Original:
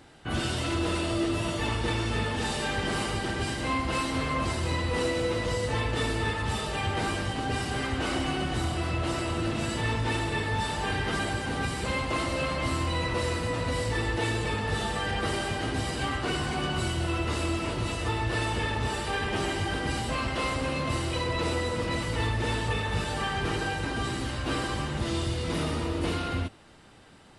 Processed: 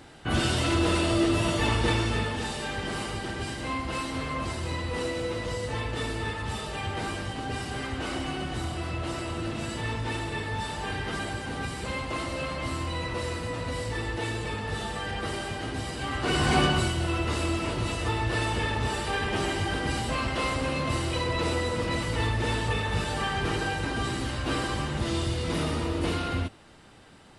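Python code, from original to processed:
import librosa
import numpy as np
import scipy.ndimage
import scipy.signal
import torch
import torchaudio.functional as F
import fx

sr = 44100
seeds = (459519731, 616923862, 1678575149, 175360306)

y = fx.gain(x, sr, db=fx.line((1.9, 4.0), (2.53, -3.0), (16.03, -3.0), (16.57, 9.0), (16.93, 1.0)))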